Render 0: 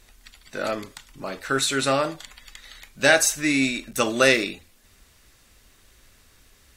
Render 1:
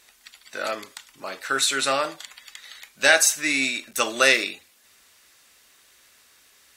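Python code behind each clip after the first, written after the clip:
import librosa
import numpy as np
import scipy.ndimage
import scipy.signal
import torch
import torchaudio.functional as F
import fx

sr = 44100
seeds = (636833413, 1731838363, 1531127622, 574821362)

y = fx.highpass(x, sr, hz=880.0, slope=6)
y = y * 10.0 ** (2.5 / 20.0)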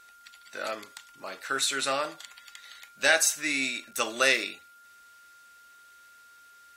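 y = x + 10.0 ** (-47.0 / 20.0) * np.sin(2.0 * np.pi * 1400.0 * np.arange(len(x)) / sr)
y = y * 10.0 ** (-5.5 / 20.0)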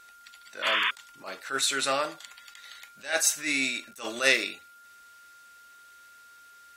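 y = fx.spec_paint(x, sr, seeds[0], shape='noise', start_s=0.62, length_s=0.29, low_hz=950.0, high_hz=3600.0, level_db=-27.0)
y = fx.attack_slew(y, sr, db_per_s=180.0)
y = y * 10.0 ** (1.5 / 20.0)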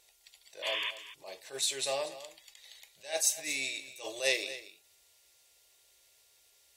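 y = fx.fixed_phaser(x, sr, hz=570.0, stages=4)
y = y + 10.0 ** (-14.5 / 20.0) * np.pad(y, (int(235 * sr / 1000.0), 0))[:len(y)]
y = y * 10.0 ** (-3.5 / 20.0)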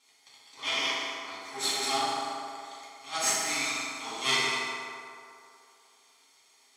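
y = fx.lower_of_two(x, sr, delay_ms=0.91)
y = fx.bandpass_edges(y, sr, low_hz=330.0, high_hz=7700.0)
y = fx.rev_fdn(y, sr, rt60_s=2.6, lf_ratio=0.7, hf_ratio=0.5, size_ms=22.0, drr_db=-8.5)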